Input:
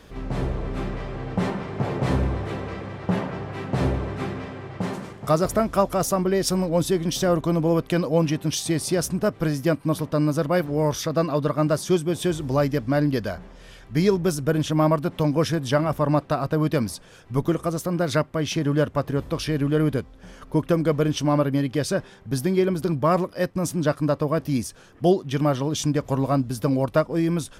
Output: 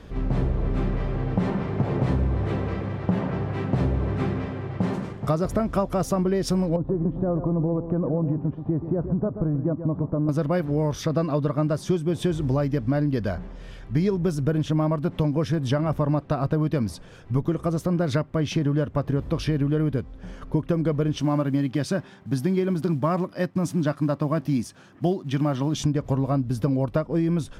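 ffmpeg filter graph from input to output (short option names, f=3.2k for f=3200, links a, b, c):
-filter_complex "[0:a]asettb=1/sr,asplit=3[a][b][c];[a]atrim=end=6.764[d];[b]atrim=start=6.76:end=10.29,asetpts=PTS-STARTPTS,afade=t=in:d=0.004:c=qsin,afade=t=out:st=3.526:d=0.004:c=qsin,lowpass=f=1.1k:w=0.5412,lowpass=f=1.1k:w=1.3066,acompressor=threshold=-23dB:ratio=3:attack=3.2:release=140:knee=1:detection=peak,aecho=1:1:130:0.266,atrim=end_sample=155673[e];[c]atrim=start=10.286[f];[d][e]acrossfade=d=0.004:c1=hsin:c2=qsin[g];[g][f]acrossfade=d=0.004:c1=qsin:c2=hsin,asettb=1/sr,asplit=3[h][i][j];[h]atrim=end=21.204[k];[i]atrim=start=21.2:end=25.77,asetpts=PTS-STARTPTS,afade=t=in:d=0.004:c=qsin,afade=t=out:st=4.566:d=0.004:c=qsin,equalizer=f=460:t=o:w=0.35:g=-10.5,acrusher=bits=8:mode=log:mix=0:aa=0.000001,highpass=150[l];[j]atrim=start=25.766[m];[k][l]acrossfade=d=0.004:c1=hsin:c2=qsin[n];[n][m]acrossfade=d=0.004:c1=qsin:c2=hsin,lowpass=f=4k:p=1,lowshelf=f=310:g=7.5,acompressor=threshold=-19dB:ratio=6"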